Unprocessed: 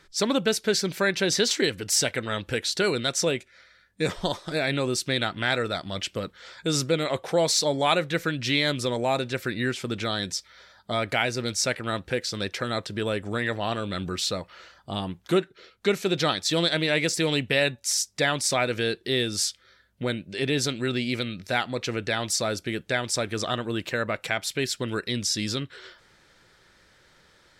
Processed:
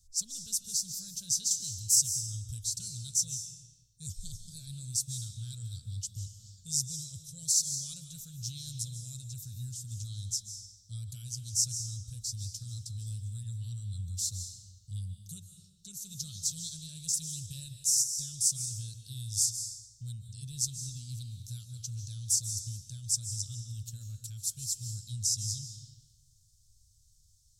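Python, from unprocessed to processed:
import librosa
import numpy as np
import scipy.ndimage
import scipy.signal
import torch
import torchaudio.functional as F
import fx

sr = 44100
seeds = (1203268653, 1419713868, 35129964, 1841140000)

y = scipy.signal.sosfilt(scipy.signal.ellip(3, 1.0, 50, [100.0, 6400.0], 'bandstop', fs=sr, output='sos'), x)
y = fx.rev_freeverb(y, sr, rt60_s=1.1, hf_ratio=0.9, predelay_ms=110, drr_db=7.0)
y = F.gain(torch.from_numpy(y), 2.0).numpy()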